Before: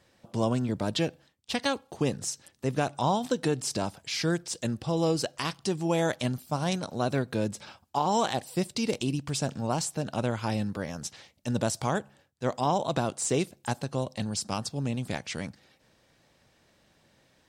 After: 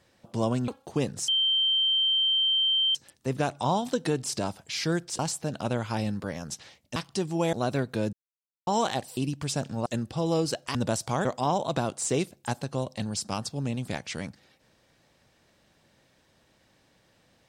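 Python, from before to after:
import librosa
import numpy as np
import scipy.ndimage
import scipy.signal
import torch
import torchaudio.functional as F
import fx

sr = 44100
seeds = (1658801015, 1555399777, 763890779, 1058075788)

y = fx.edit(x, sr, fx.cut(start_s=0.68, length_s=1.05),
    fx.insert_tone(at_s=2.33, length_s=1.67, hz=3130.0, db=-21.0),
    fx.swap(start_s=4.57, length_s=0.89, other_s=9.72, other_length_s=1.77),
    fx.cut(start_s=6.03, length_s=0.89),
    fx.silence(start_s=7.52, length_s=0.54),
    fx.cut(start_s=8.56, length_s=0.47),
    fx.cut(start_s=11.99, length_s=0.46), tone=tone)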